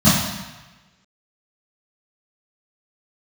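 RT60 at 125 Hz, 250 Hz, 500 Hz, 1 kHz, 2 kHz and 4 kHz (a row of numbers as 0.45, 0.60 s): 1.2, 0.95, 1.1, 1.2, 1.3, 1.1 s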